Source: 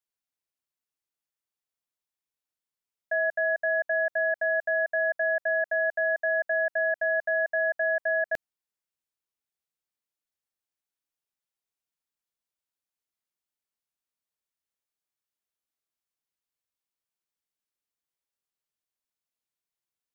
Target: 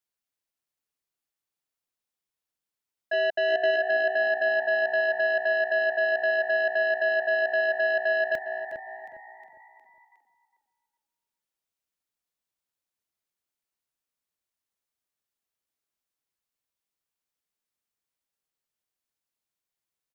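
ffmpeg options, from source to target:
-filter_complex "[0:a]asettb=1/sr,asplit=3[s0][s1][s2];[s0]atrim=end=3.134[s3];[s1]atrim=start=3.13:end=3.76,asetpts=PTS-STARTPTS,afade=t=in:d=0.004:c=qsin,afade=t=out:st=0.626:d=0.004:c=qsin,equalizer=f=730:w=1.8:g=6.5[s4];[s2]atrim=start=3.756[s5];[s3][s4]acrossfade=d=0.004:c1=hsin:c2=qsin[s6];[s6][s5]acrossfade=d=0.004:c1=qsin:c2=hsin,asplit=6[s7][s8][s9][s10][s11][s12];[s8]adelay=361,afreqshift=60,volume=0.2[s13];[s9]adelay=722,afreqshift=120,volume=0.104[s14];[s10]adelay=1083,afreqshift=180,volume=0.0537[s15];[s11]adelay=1444,afreqshift=240,volume=0.0282[s16];[s12]adelay=1805,afreqshift=300,volume=0.0146[s17];[s7][s13][s14][s15][s16][s17]amix=inputs=6:normalize=0,aeval=exprs='0.188*sin(PI/2*1.58*val(0)/0.188)':c=same,asplit=2[s18][s19];[s19]adelay=407,lowpass=f=830:p=1,volume=0.531,asplit=2[s20][s21];[s21]adelay=407,lowpass=f=830:p=1,volume=0.37,asplit=2[s22][s23];[s23]adelay=407,lowpass=f=830:p=1,volume=0.37,asplit=2[s24][s25];[s25]adelay=407,lowpass=f=830:p=1,volume=0.37[s26];[s18][s20][s22][s24][s26]amix=inputs=5:normalize=0,volume=0.473"

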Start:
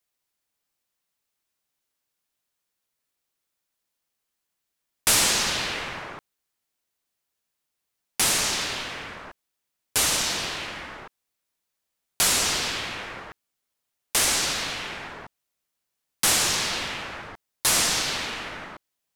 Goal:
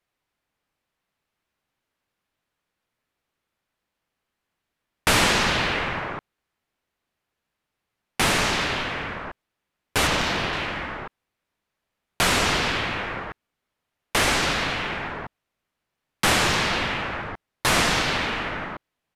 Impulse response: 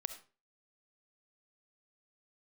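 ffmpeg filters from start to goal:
-filter_complex "[0:a]bass=f=250:g=3,treble=f=4000:g=-15,asettb=1/sr,asplit=3[s0][s1][s2];[s0]atrim=end=10.074[s3];[s1]atrim=start=10.07:end=10.53,asetpts=PTS-STARTPTS,afade=t=in:d=0.004:c=qsin,afade=t=out:st=0.456:d=0.004:c=qsin,adynamicsmooth=sensitivity=4:basefreq=5200[s4];[s2]atrim=start=10.526[s5];[s3][s4]acrossfade=d=0.004:c1=hsin:c2=qsin[s6];[s6][s5]acrossfade=d=0.004:c1=qsin:c2=hsin,aresample=32000,aresample=44100,volume=2.24"

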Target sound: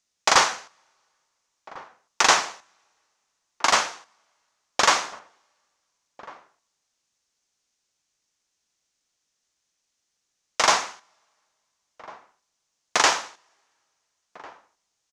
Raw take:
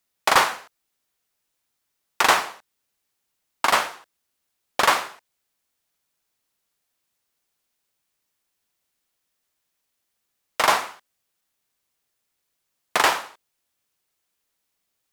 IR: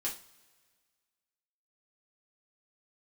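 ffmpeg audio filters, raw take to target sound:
-filter_complex "[0:a]lowpass=f=6300:t=q:w=3.1,asplit=2[s0][s1];[s1]adelay=1399,volume=0.112,highshelf=f=4000:g=-31.5[s2];[s0][s2]amix=inputs=2:normalize=0,asplit=2[s3][s4];[1:a]atrim=start_sample=2205,asetrate=37485,aresample=44100[s5];[s4][s5]afir=irnorm=-1:irlink=0,volume=0.0891[s6];[s3][s6]amix=inputs=2:normalize=0,volume=0.794"

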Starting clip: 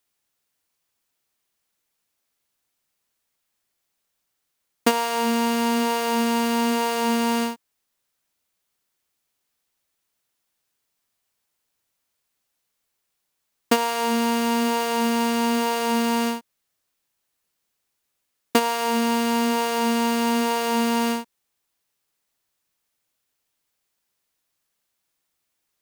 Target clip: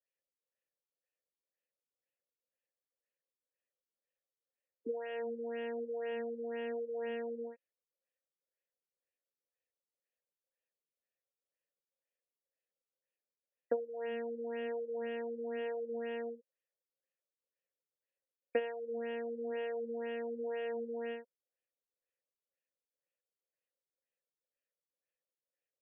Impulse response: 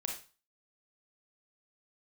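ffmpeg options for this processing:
-filter_complex "[0:a]asplit=3[s0][s1][s2];[s0]bandpass=f=530:t=q:w=8,volume=1[s3];[s1]bandpass=f=1840:t=q:w=8,volume=0.501[s4];[s2]bandpass=f=2480:t=q:w=8,volume=0.355[s5];[s3][s4][s5]amix=inputs=3:normalize=0,acrossover=split=2600[s6][s7];[s7]acompressor=threshold=0.00158:ratio=4:attack=1:release=60[s8];[s6][s8]amix=inputs=2:normalize=0,afftfilt=real='re*lt(b*sr/1024,460*pow(3500/460,0.5+0.5*sin(2*PI*2*pts/sr)))':imag='im*lt(b*sr/1024,460*pow(3500/460,0.5+0.5*sin(2*PI*2*pts/sr)))':win_size=1024:overlap=0.75,volume=0.75"

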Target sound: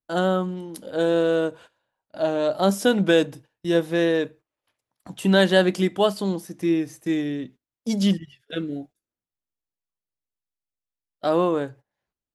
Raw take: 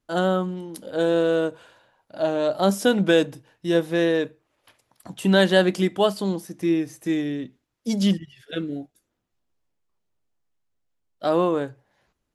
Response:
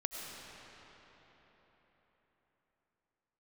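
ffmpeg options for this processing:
-af "agate=range=0.141:threshold=0.00631:ratio=16:detection=peak"

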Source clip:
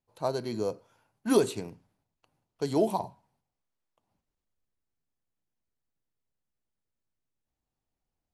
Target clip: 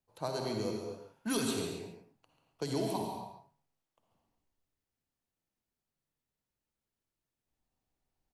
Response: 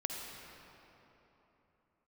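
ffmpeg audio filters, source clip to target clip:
-filter_complex "[0:a]acrossover=split=140|1500[s0][s1][s2];[s1]acompressor=threshold=0.02:ratio=6[s3];[s0][s3][s2]amix=inputs=3:normalize=0,asplit=2[s4][s5];[s5]adelay=139.9,volume=0.355,highshelf=f=4000:g=-3.15[s6];[s4][s6]amix=inputs=2:normalize=0[s7];[1:a]atrim=start_sample=2205,afade=t=out:st=0.33:d=0.01,atrim=end_sample=14994[s8];[s7][s8]afir=irnorm=-1:irlink=0"

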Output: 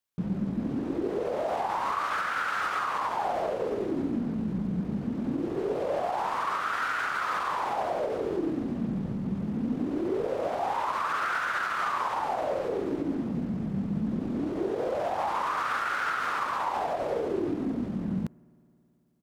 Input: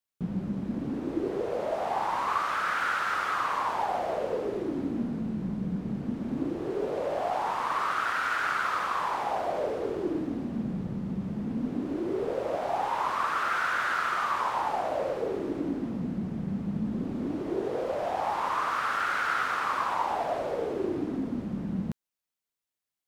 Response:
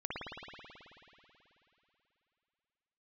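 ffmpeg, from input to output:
-filter_complex "[0:a]atempo=1.2,alimiter=limit=0.0794:level=0:latency=1:release=77,asplit=2[s0][s1];[1:a]atrim=start_sample=2205,lowpass=2300[s2];[s1][s2]afir=irnorm=-1:irlink=0,volume=0.0422[s3];[s0][s3]amix=inputs=2:normalize=0,volume=1.19"

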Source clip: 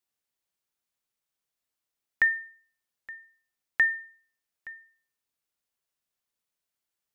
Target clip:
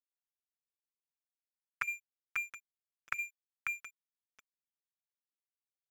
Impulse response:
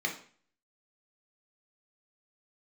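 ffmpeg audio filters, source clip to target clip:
-filter_complex "[0:a]aresample=22050,aresample=44100,acrossover=split=310|1700[s0][s1][s2];[s0]lowshelf=f=79:g=-8.5[s3];[s1]acompressor=threshold=0.00891:ratio=6[s4];[s3][s4][s2]amix=inputs=3:normalize=0,asetrate=48091,aresample=44100,atempo=0.917004,firequalizer=gain_entry='entry(110,0);entry(180,-28);entry(1100,14);entry(1700,-2);entry(2900,-20)':delay=0.05:min_phase=1,asplit=2[s5][s6];[s6]aecho=0:1:656:0.501[s7];[s5][s7]amix=inputs=2:normalize=0,afftfilt=real='re*lt(hypot(re,im),0.282)':imag='im*lt(hypot(re,im),0.282)':win_size=1024:overlap=0.75,aeval=exprs='sgn(val(0))*max(abs(val(0))-0.00398,0)':c=same,asetrate=53361,aresample=44100,volume=1.68"

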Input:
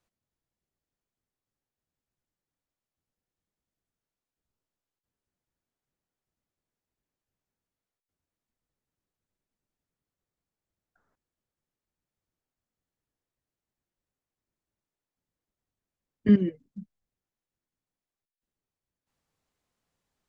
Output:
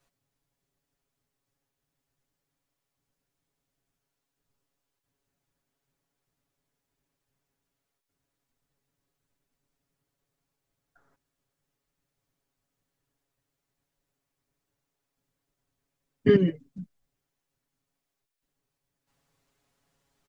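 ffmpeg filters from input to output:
-af "aecho=1:1:7.2:0.99,volume=1.68"

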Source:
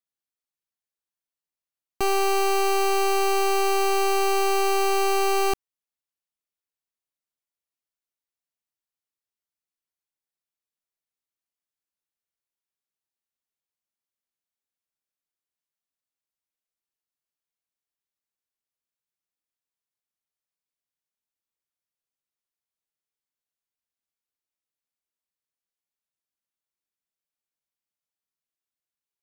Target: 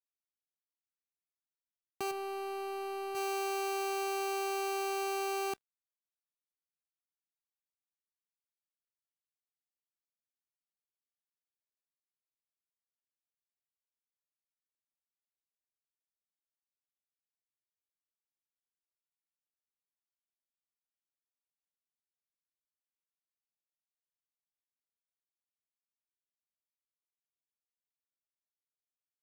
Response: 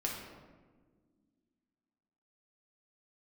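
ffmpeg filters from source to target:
-filter_complex "[0:a]asettb=1/sr,asplit=3[s0][s1][s2];[s0]atrim=end=2.114[s3];[s1]atrim=start=2.11:end=3.15,asetpts=PTS-STARTPTS,afade=t=in:d=0.004:c=qsin,afade=t=out:st=1.036:d=0.004:c=qsin,bass=f=250:g=6,treble=f=4000:g=-7[s4];[s2]atrim=start=3.146[s5];[s3][s4]acrossfade=d=0.004:c1=hsin:c2=qsin[s6];[s6][s5]acrossfade=d=0.004:c1=qsin:c2=hsin,asplit=2[s7][s8];[1:a]atrim=start_sample=2205,atrim=end_sample=3969[s9];[s8][s9]afir=irnorm=-1:irlink=0,volume=0.1[s10];[s7][s10]amix=inputs=2:normalize=0,alimiter=level_in=1.26:limit=0.0631:level=0:latency=1:release=91,volume=0.794,highpass=120,acrusher=bits=6:mix=0:aa=0.5,volume=0.501"

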